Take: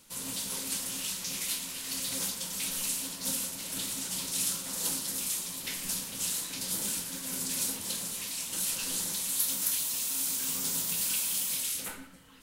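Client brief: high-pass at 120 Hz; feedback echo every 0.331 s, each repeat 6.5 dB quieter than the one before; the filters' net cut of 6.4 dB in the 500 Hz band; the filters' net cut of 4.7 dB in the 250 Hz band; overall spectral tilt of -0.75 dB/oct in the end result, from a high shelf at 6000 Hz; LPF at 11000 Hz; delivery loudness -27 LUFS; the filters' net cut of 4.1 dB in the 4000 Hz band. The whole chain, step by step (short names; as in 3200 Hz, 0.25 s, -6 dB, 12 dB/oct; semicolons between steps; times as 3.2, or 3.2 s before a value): HPF 120 Hz; LPF 11000 Hz; bell 250 Hz -4 dB; bell 500 Hz -6.5 dB; bell 4000 Hz -3.5 dB; high shelf 6000 Hz -4 dB; feedback echo 0.331 s, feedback 47%, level -6.5 dB; gain +8 dB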